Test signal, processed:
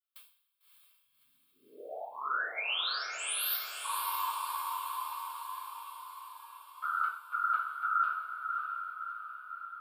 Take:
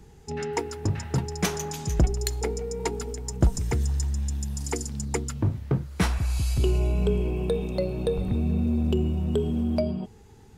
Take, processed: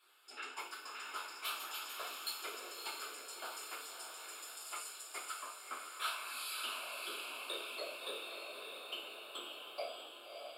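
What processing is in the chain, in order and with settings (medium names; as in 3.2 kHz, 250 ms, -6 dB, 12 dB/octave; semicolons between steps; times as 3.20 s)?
high-pass 910 Hz 24 dB/octave; dynamic bell 1.8 kHz, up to -5 dB, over -42 dBFS, Q 1.6; reverse; compression, threshold -33 dBFS; reverse; static phaser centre 1.3 kHz, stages 8; whisper effect; on a send: echo that smears into a reverb 606 ms, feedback 56%, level -5 dB; on the sum: two-slope reverb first 0.48 s, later 1.6 s, from -20 dB, DRR -6.5 dB; trim -5.5 dB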